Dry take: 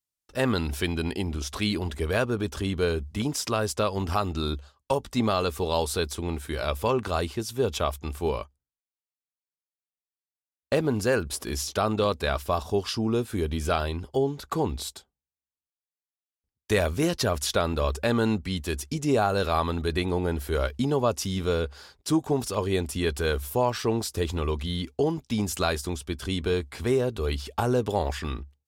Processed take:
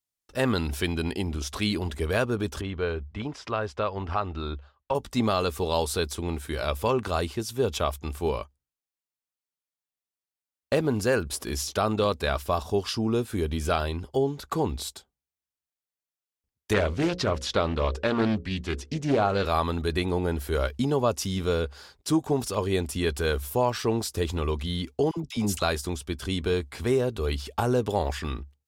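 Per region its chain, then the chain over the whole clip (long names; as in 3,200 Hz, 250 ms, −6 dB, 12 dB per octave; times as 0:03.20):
0:02.61–0:04.95: low-pass filter 2,500 Hz + parametric band 200 Hz −6.5 dB 2.3 octaves
0:16.73–0:19.46: low-pass filter 5,200 Hz + mains-hum notches 60/120/180/240/300/360/420/480/540 Hz + highs frequency-modulated by the lows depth 0.4 ms
0:25.11–0:25.62: noise gate −52 dBFS, range −18 dB + notch filter 1,700 Hz, Q 10 + all-pass dispersion lows, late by 62 ms, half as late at 740 Hz
whole clip: no processing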